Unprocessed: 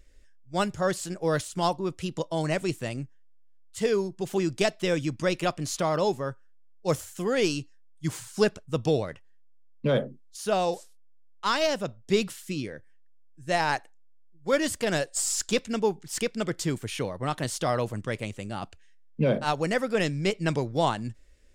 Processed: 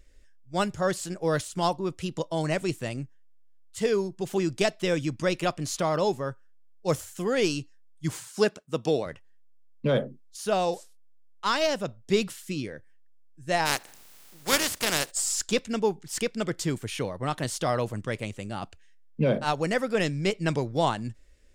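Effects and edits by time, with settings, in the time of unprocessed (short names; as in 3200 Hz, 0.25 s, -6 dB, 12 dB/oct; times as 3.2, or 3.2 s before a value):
8.18–9.06 HPF 190 Hz
13.65–15.1 spectral contrast lowered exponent 0.4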